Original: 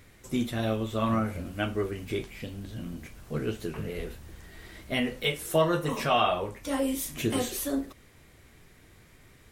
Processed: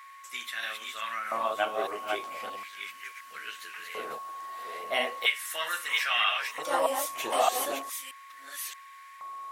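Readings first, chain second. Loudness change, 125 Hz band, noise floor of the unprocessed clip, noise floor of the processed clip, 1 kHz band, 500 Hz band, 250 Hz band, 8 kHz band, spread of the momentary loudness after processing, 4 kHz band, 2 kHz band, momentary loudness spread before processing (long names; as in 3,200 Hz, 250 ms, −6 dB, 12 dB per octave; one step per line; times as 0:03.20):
−1.0 dB, below −30 dB, −57 dBFS, −49 dBFS, +2.5 dB, −3.5 dB, −17.5 dB, +1.5 dB, 15 LU, +4.0 dB, +5.5 dB, 16 LU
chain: delay that plays each chunk backwards 624 ms, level −3.5 dB
steady tone 1,100 Hz −42 dBFS
auto-filter high-pass square 0.38 Hz 750–1,800 Hz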